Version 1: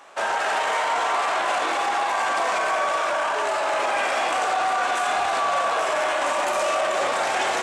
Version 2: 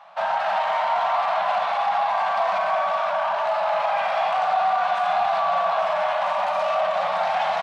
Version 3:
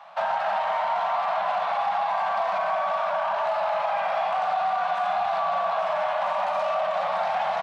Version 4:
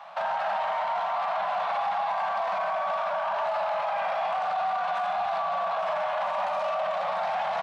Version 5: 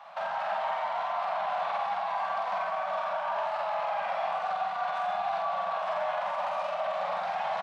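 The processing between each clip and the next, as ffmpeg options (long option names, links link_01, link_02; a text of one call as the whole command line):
ffmpeg -i in.wav -af "firequalizer=gain_entry='entry(120,0);entry(190,11);entry(280,-30);entry(650,9);entry(910,7);entry(1600,0);entry(4100,1);entry(7400,-19);entry(13000,-14)':delay=0.05:min_phase=1,volume=-5dB" out.wav
ffmpeg -i in.wav -filter_complex "[0:a]acrossover=split=280|1800[link_01][link_02][link_03];[link_01]acompressor=threshold=-51dB:ratio=4[link_04];[link_02]acompressor=threshold=-24dB:ratio=4[link_05];[link_03]acompressor=threshold=-42dB:ratio=4[link_06];[link_04][link_05][link_06]amix=inputs=3:normalize=0,volume=1dB" out.wav
ffmpeg -i in.wav -af "alimiter=limit=-23dB:level=0:latency=1:release=20,volume=2dB" out.wav
ffmpeg -i in.wav -filter_complex "[0:a]asplit=2[link_01][link_02];[link_02]adelay=47,volume=-3dB[link_03];[link_01][link_03]amix=inputs=2:normalize=0,volume=-4.5dB" out.wav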